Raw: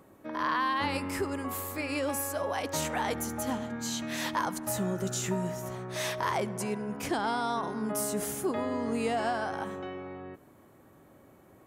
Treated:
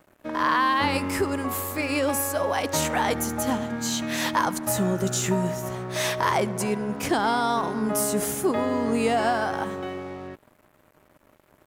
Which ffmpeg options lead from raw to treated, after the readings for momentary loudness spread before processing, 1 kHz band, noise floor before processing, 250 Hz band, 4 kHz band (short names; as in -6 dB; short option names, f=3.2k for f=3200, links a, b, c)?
7 LU, +7.0 dB, -58 dBFS, +7.0 dB, +7.0 dB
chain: -af "aeval=exprs='val(0)+0.00112*sin(2*PI*610*n/s)':c=same,aeval=exprs='sgn(val(0))*max(abs(val(0))-0.002,0)':c=same,volume=7.5dB"